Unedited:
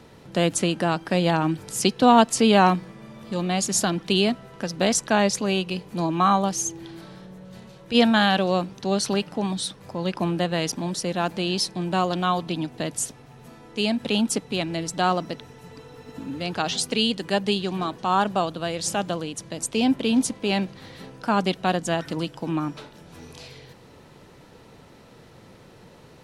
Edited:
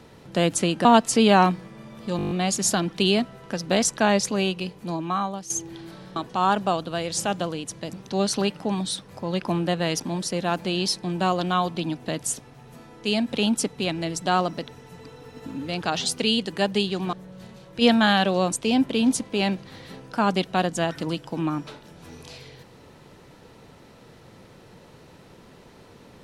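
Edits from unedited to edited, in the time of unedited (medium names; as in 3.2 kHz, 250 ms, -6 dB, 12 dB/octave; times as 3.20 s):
0.85–2.09 s: delete
3.41 s: stutter 0.02 s, 8 plays
5.49–6.60 s: fade out, to -12.5 dB
7.26–8.65 s: swap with 17.85–19.62 s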